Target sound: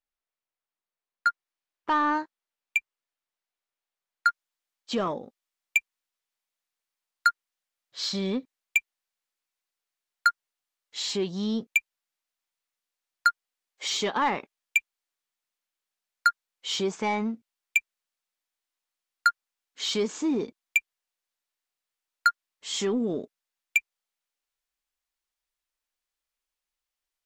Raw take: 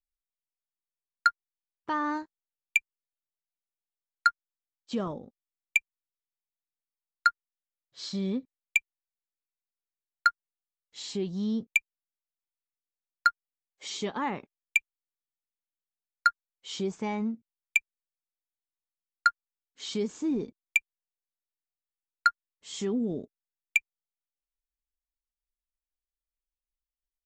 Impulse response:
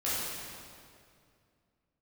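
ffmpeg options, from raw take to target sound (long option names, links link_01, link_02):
-filter_complex "[0:a]asetnsamples=nb_out_samples=441:pad=0,asendcmd='1.27 lowpass f 2500;4.29 lowpass f 6200',asplit=2[link_01][link_02];[link_02]highpass=frequency=720:poles=1,volume=16dB,asoftclip=type=tanh:threshold=-13.5dB[link_03];[link_01][link_03]amix=inputs=2:normalize=0,lowpass=frequency=1300:poles=1,volume=-6dB"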